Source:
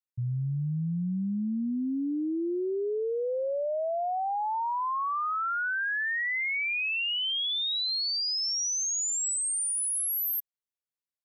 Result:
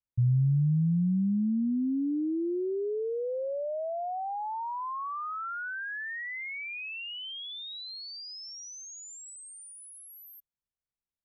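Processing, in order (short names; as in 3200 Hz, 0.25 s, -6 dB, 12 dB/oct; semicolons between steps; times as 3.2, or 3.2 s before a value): RIAA curve playback; gain -5 dB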